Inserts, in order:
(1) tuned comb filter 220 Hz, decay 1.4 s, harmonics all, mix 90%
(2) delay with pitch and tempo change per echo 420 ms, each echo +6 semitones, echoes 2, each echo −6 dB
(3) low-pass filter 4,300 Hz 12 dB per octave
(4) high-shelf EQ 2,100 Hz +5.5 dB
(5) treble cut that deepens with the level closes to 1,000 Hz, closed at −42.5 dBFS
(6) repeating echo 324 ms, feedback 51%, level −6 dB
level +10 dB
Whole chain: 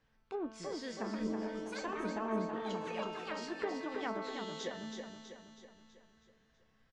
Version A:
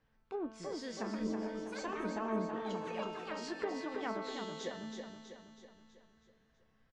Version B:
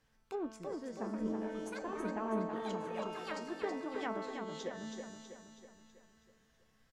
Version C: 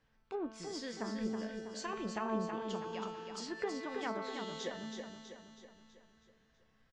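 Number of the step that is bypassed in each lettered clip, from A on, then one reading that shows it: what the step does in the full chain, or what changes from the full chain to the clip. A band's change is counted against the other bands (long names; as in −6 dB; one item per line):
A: 4, change in momentary loudness spread −2 LU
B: 3, 4 kHz band −4.5 dB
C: 2, 8 kHz band +3.5 dB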